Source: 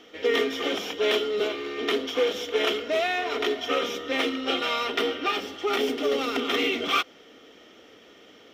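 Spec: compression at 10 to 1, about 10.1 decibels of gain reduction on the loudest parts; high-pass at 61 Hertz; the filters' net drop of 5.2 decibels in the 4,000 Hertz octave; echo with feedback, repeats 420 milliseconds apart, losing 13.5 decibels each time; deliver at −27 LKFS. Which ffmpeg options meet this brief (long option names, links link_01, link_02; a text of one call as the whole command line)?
ffmpeg -i in.wav -af "highpass=61,equalizer=frequency=4000:width_type=o:gain=-7.5,acompressor=threshold=-30dB:ratio=10,aecho=1:1:420|840:0.211|0.0444,volume=7dB" out.wav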